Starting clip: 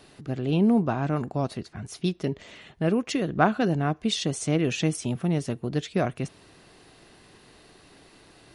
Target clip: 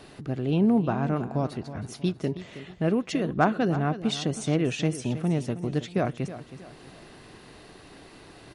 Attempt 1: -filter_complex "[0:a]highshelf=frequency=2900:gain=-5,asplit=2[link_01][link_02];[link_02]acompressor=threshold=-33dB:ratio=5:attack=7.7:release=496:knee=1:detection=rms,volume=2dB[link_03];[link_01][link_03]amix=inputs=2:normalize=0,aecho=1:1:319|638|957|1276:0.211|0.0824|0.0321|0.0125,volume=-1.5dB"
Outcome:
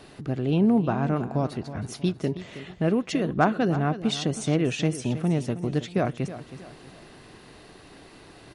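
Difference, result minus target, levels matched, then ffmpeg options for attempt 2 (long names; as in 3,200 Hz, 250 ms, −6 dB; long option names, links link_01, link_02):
downward compressor: peak gain reduction −7.5 dB
-filter_complex "[0:a]highshelf=frequency=2900:gain=-5,asplit=2[link_01][link_02];[link_02]acompressor=threshold=-42.5dB:ratio=5:attack=7.7:release=496:knee=1:detection=rms,volume=2dB[link_03];[link_01][link_03]amix=inputs=2:normalize=0,aecho=1:1:319|638|957|1276:0.211|0.0824|0.0321|0.0125,volume=-1.5dB"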